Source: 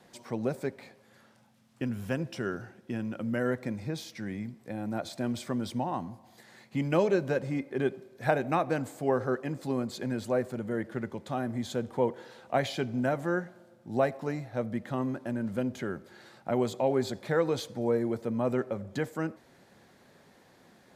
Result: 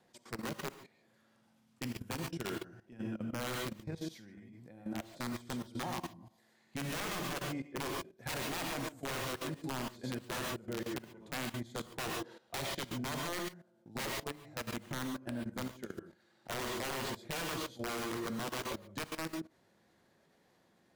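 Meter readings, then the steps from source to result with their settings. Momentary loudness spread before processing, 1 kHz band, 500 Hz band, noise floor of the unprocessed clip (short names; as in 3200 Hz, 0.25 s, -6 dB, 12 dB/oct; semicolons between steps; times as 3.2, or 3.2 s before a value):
9 LU, -6.5 dB, -13.0 dB, -61 dBFS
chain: wrapped overs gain 22.5 dB; non-linear reverb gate 0.16 s rising, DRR 2 dB; level quantiser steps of 16 dB; gain -6 dB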